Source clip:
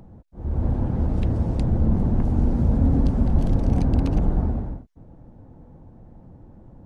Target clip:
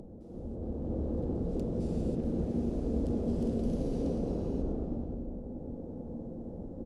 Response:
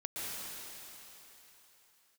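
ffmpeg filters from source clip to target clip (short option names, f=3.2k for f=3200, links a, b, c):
-filter_complex "[0:a]asettb=1/sr,asplit=3[a][b][c];[a]atrim=end=1.494[d];[b]atrim=start=1.49:end=3.76,asetpts=PTS-STARTPTS,afade=t=in:d=0.004:c=qsin,afade=t=out:st=2.266:d=0.004:c=qsin,highshelf=f=1.5k:t=q:w=1.5:g=8.5[e];[c]atrim=start=3.756[f];[d][e]acrossfade=d=0.004:c1=hsin:c2=qsin[g];[g][f]acrossfade=d=0.004:c1=qsin:c2=hsin,asplit=2[h][i];[i]adelay=641.4,volume=-17dB,highshelf=f=4k:g=-14.4[j];[h][j]amix=inputs=2:normalize=0,asoftclip=type=hard:threshold=-22.5dB,acompressor=threshold=-47dB:ratio=2.5,equalizer=f=125:t=o:w=1:g=-4,equalizer=f=250:t=o:w=1:g=6,equalizer=f=500:t=o:w=1:g=11,equalizer=f=1k:t=o:w=1:g=-7,equalizer=f=2k:t=o:w=1:g=-11[k];[1:a]atrim=start_sample=2205,afade=t=out:st=0.34:d=0.01,atrim=end_sample=15435,asetrate=23373,aresample=44100[l];[k][l]afir=irnorm=-1:irlink=0"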